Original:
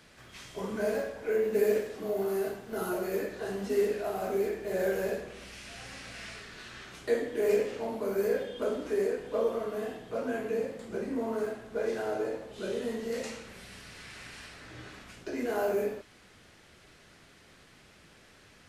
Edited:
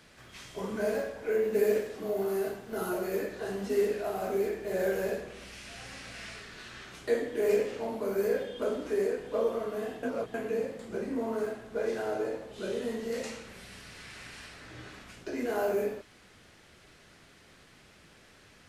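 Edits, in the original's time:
0:10.03–0:10.34: reverse

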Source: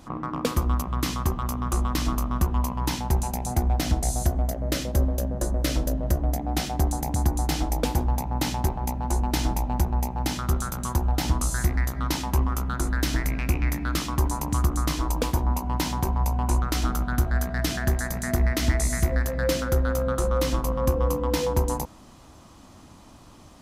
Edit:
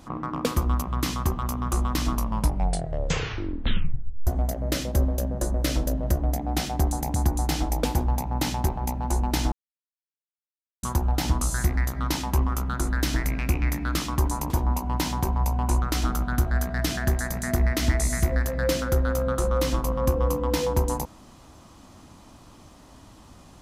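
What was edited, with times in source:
0:02.11: tape stop 2.16 s
0:09.52–0:10.83: silence
0:14.50–0:15.30: remove

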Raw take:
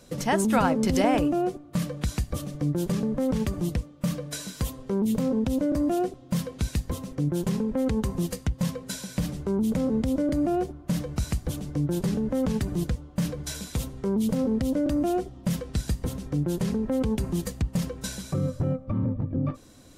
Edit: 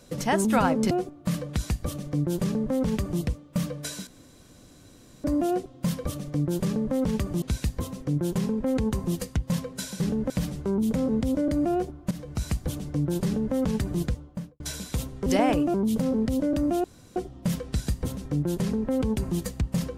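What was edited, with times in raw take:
0:00.91–0:01.39: move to 0:14.07
0:02.32–0:03.69: duplicate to 0:06.53
0:04.55–0:05.72: fill with room tone
0:10.92–0:11.30: fade in linear, from −12.5 dB
0:12.05–0:12.35: duplicate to 0:09.11
0:12.94–0:13.41: fade out and dull
0:15.17: splice in room tone 0.32 s

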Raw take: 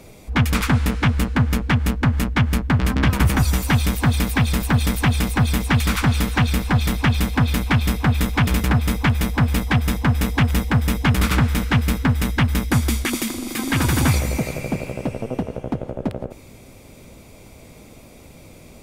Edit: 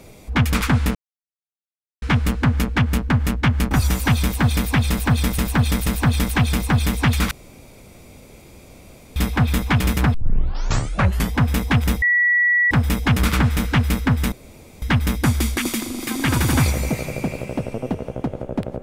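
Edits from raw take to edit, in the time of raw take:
0:00.95: splice in silence 1.07 s
0:02.64–0:03.34: remove
0:04.53–0:05.01: repeat, 3 plays
0:05.98–0:07.83: fill with room tone
0:08.81: tape start 1.20 s
0:10.69: insert tone 1,940 Hz −13.5 dBFS 0.69 s
0:12.30: splice in room tone 0.50 s

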